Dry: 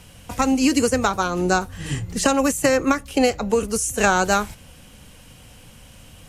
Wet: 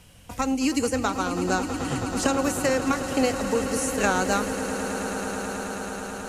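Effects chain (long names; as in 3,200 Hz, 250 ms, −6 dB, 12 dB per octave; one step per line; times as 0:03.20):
echo that builds up and dies away 108 ms, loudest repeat 8, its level −14.5 dB
level −6 dB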